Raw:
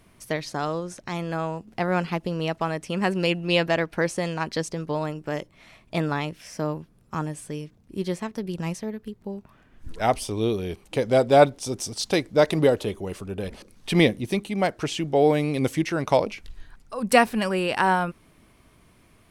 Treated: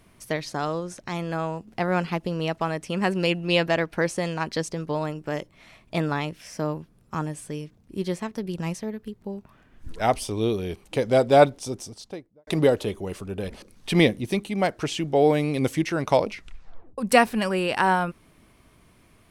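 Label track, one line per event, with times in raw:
11.430000	12.470000	studio fade out
16.310000	16.310000	tape stop 0.67 s

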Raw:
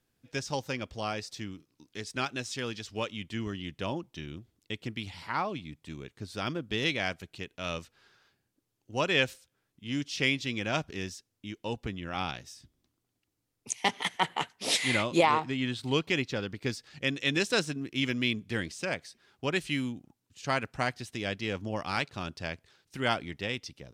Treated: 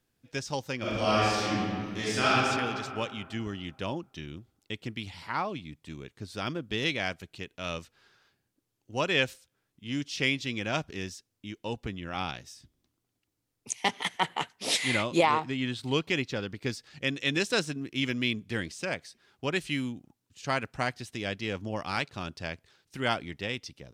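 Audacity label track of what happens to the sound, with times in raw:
0.780000	2.340000	reverb throw, RT60 2.3 s, DRR -10.5 dB

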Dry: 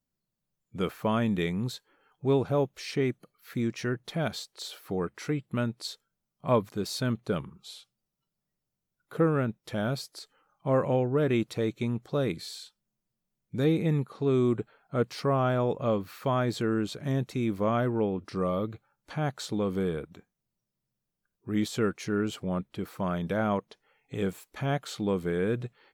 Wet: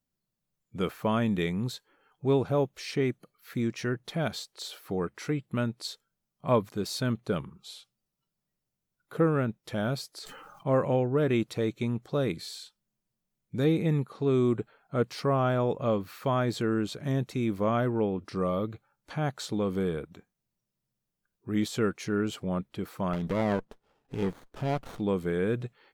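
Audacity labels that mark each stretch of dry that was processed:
10.150000	10.750000	sustainer at most 29 dB/s
23.130000	24.990000	running maximum over 17 samples

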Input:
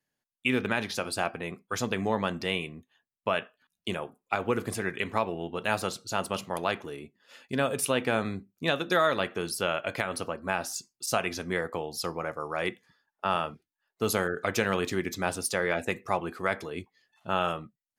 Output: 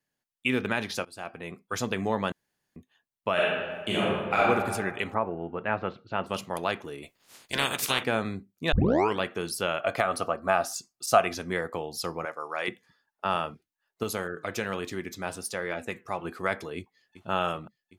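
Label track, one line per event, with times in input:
1.050000	1.650000	fade in, from -23 dB
2.320000	2.760000	room tone
3.330000	4.430000	reverb throw, RT60 1.5 s, DRR -7.5 dB
5.130000	6.260000	LPF 1700 Hz -> 2900 Hz 24 dB/oct
7.020000	8.030000	spectral limiter ceiling under each frame's peak by 28 dB
8.720000	8.720000	tape start 0.49 s
9.800000	11.350000	small resonant body resonances 700/1200 Hz, height 11 dB, ringing for 20 ms
12.250000	12.680000	weighting filter A
14.030000	16.250000	flange 1.2 Hz, delay 2.7 ms, depth 4 ms, regen +88%
16.770000	17.290000	echo throw 0.38 s, feedback 75%, level -12.5 dB

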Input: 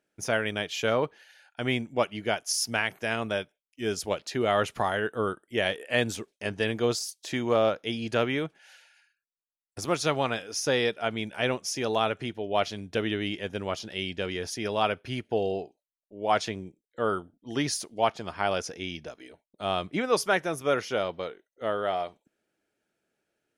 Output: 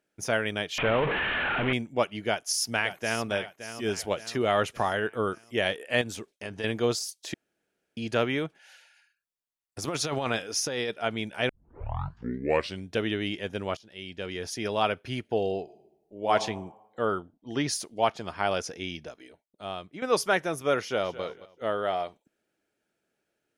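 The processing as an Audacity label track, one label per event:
0.780000	1.730000	delta modulation 16 kbps, step -21.5 dBFS
2.270000	3.320000	echo throw 0.57 s, feedback 50%, level -11.5 dB
6.010000	6.640000	compressor 2.5:1, threshold -34 dBFS
7.340000	7.970000	room tone
9.840000	10.900000	negative-ratio compressor -29 dBFS
11.490000	11.490000	tape start 1.38 s
13.770000	14.570000	fade in linear, from -20 dB
15.630000	16.310000	reverb throw, RT60 1 s, DRR 3.5 dB
17.050000	17.690000	air absorption 73 m
18.910000	20.020000	fade out linear, to -14 dB
20.810000	21.230000	echo throw 0.22 s, feedback 25%, level -15 dB

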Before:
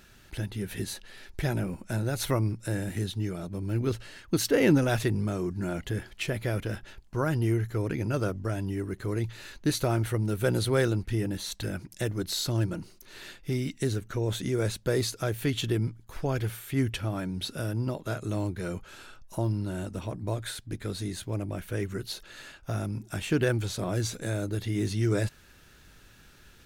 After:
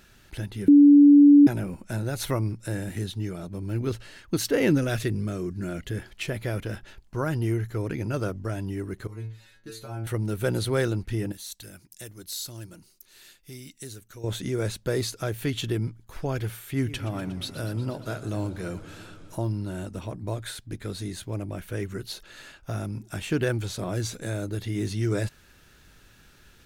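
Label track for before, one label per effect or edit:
0.680000	1.470000	bleep 288 Hz -9.5 dBFS
4.690000	5.940000	bell 870 Hz -10 dB 0.51 oct
9.070000	10.070000	metallic resonator 110 Hz, decay 0.44 s, inharmonicity 0.002
11.320000	14.240000	pre-emphasis coefficient 0.8
16.700000	19.370000	warbling echo 0.12 s, feedback 80%, depth 150 cents, level -16 dB

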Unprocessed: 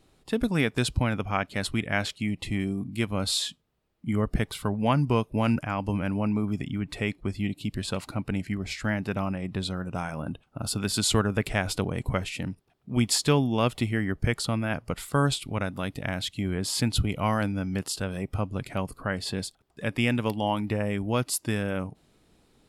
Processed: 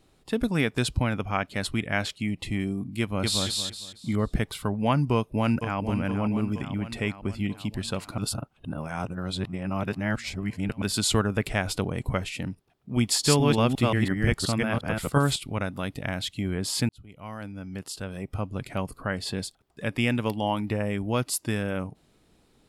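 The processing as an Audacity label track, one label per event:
3.000000	3.460000	echo throw 0.23 s, feedback 30%, level -2 dB
5.140000	5.800000	echo throw 0.47 s, feedback 65%, level -9 dB
8.180000	10.820000	reverse
13.050000	15.360000	reverse delay 0.176 s, level -1 dB
16.890000	18.770000	fade in

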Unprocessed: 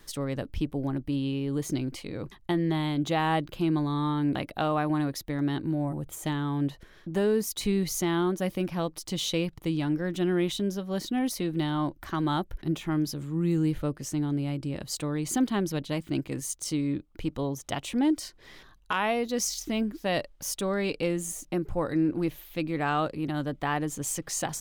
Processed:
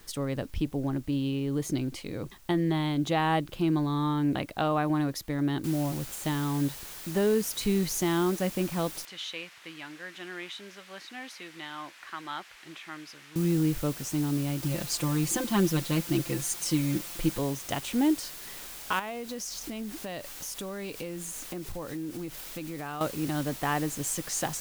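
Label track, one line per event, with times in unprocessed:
5.640000	5.640000	noise floor step -60 dB -43 dB
9.050000	13.360000	band-pass 2000 Hz, Q 1.3
14.620000	17.390000	comb 5.8 ms, depth 87%
18.990000	23.010000	compressor 4:1, threshold -34 dBFS

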